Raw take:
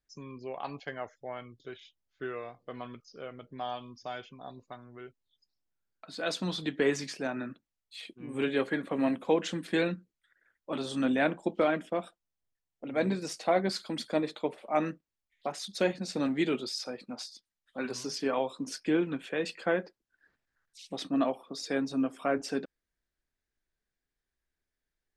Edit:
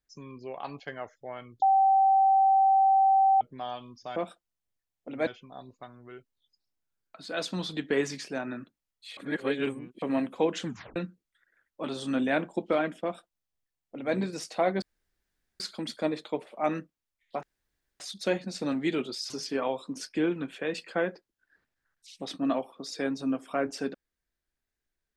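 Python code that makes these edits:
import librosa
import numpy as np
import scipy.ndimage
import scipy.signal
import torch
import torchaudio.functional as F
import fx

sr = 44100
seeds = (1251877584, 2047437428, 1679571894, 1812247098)

y = fx.edit(x, sr, fx.bleep(start_s=1.62, length_s=1.79, hz=775.0, db=-18.0),
    fx.reverse_span(start_s=8.06, length_s=0.85),
    fx.tape_stop(start_s=9.55, length_s=0.3),
    fx.duplicate(start_s=11.92, length_s=1.11, to_s=4.16),
    fx.insert_room_tone(at_s=13.71, length_s=0.78),
    fx.insert_room_tone(at_s=15.54, length_s=0.57),
    fx.cut(start_s=16.84, length_s=1.17), tone=tone)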